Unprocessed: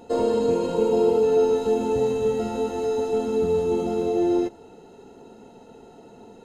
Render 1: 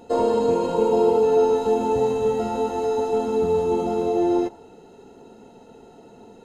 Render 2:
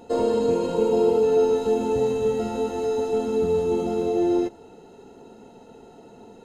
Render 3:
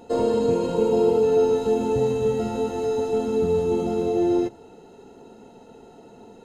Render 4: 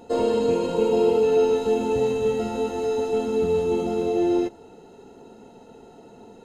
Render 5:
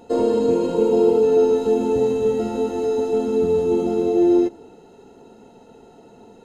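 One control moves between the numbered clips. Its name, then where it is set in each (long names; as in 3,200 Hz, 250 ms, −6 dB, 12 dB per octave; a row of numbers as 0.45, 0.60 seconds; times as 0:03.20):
dynamic equaliser, frequency: 890, 8,300, 120, 2,700, 310 Hertz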